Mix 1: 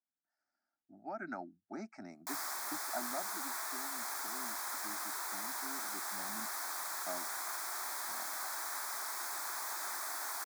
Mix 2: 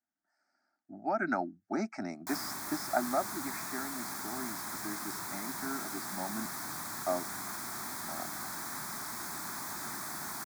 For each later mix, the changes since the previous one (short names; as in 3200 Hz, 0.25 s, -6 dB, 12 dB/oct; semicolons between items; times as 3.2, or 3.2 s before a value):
speech +11.0 dB; background: remove HPF 460 Hz 24 dB/oct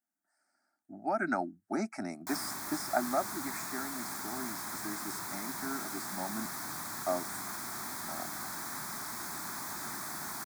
speech: remove LPF 6300 Hz 24 dB/oct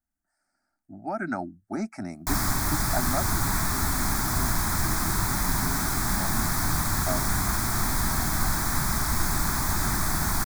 background +11.5 dB; master: remove HPF 260 Hz 12 dB/oct